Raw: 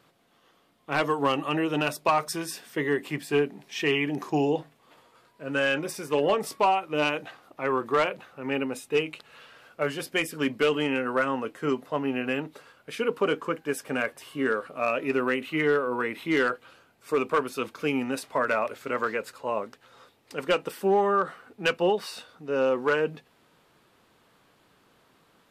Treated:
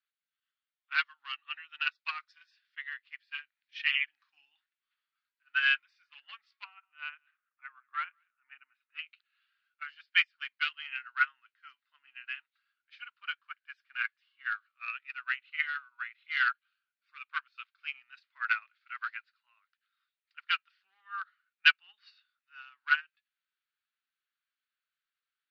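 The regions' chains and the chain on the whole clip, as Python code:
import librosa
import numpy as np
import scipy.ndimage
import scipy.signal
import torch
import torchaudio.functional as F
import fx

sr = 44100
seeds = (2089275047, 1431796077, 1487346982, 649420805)

y = fx.chain(x, sr, fx.lowpass(hz=1800.0, slope=12),
    fx.echo_single(ms=189, db=-18.0), at=(6.64, 8.99))
y = scipy.signal.sosfilt(scipy.signal.ellip(3, 1.0, 50, [1400.0, 4500.0], 'bandpass', fs=sr, output='sos'), y)
y = fx.upward_expand(y, sr, threshold_db=-45.0, expansion=2.5)
y = y * librosa.db_to_amplitude(7.5)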